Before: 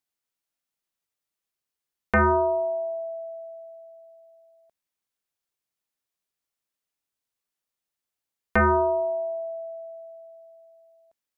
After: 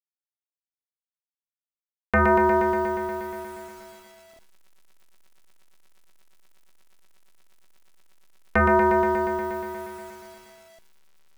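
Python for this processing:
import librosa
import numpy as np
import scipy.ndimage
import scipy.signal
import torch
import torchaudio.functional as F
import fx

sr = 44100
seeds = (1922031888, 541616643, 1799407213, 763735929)

y = fx.delta_hold(x, sr, step_db=-46.5)
y = fx.echo_crushed(y, sr, ms=119, feedback_pct=80, bits=9, wet_db=-4.5)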